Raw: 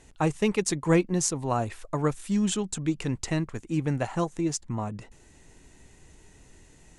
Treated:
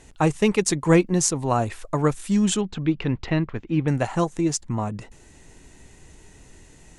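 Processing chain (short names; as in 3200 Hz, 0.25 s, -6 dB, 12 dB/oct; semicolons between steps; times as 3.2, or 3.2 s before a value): 2.61–3.88 LPF 3800 Hz 24 dB/oct; gain +5 dB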